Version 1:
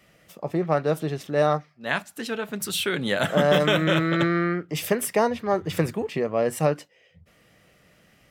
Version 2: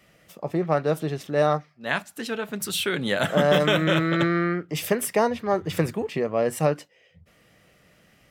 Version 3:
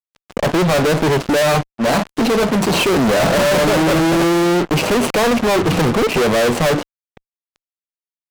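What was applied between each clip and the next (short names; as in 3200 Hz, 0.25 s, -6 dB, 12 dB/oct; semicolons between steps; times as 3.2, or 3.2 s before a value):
nothing audible
median filter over 25 samples; BPF 180–7600 Hz; fuzz box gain 47 dB, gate -52 dBFS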